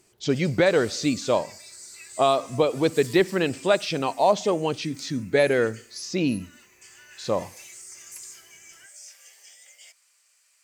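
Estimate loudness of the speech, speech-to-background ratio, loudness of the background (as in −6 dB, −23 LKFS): −24.0 LKFS, 20.0 dB, −44.0 LKFS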